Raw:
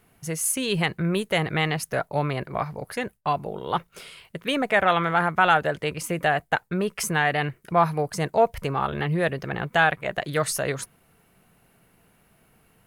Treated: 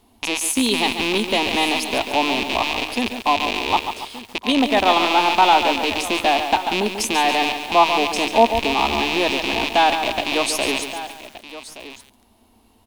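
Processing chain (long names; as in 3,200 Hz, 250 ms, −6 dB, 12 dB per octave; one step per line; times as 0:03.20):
loose part that buzzes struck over −40 dBFS, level −12 dBFS
drawn EQ curve 100 Hz 0 dB, 150 Hz −30 dB, 230 Hz +6 dB, 510 Hz −6 dB, 950 Hz +4 dB, 1,400 Hz −14 dB, 2,400 Hz −8 dB, 3,700 Hz +4 dB, 13,000 Hz −7 dB
single-tap delay 1,172 ms −15.5 dB
feedback echo at a low word length 141 ms, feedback 55%, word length 7 bits, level −8 dB
level +6 dB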